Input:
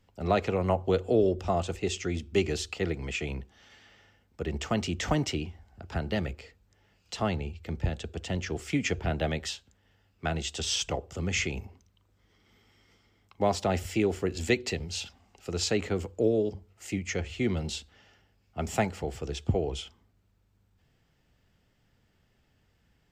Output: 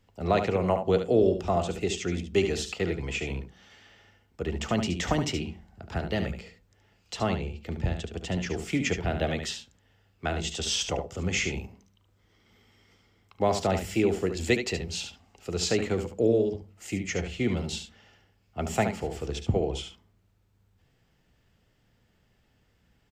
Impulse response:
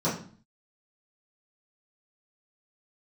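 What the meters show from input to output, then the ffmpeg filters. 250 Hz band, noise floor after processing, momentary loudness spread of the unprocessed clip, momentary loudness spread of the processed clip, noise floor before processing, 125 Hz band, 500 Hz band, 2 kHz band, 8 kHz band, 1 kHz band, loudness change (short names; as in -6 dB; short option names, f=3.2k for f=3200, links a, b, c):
+2.0 dB, -68 dBFS, 11 LU, 12 LU, -69 dBFS, +1.0 dB, +2.5 dB, +1.5 dB, +1.5 dB, +2.0 dB, +1.5 dB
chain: -filter_complex "[0:a]aecho=1:1:72:0.398,asplit=2[a][b];[1:a]atrim=start_sample=2205[c];[b][c]afir=irnorm=-1:irlink=0,volume=-29.5dB[d];[a][d]amix=inputs=2:normalize=0,volume=1dB"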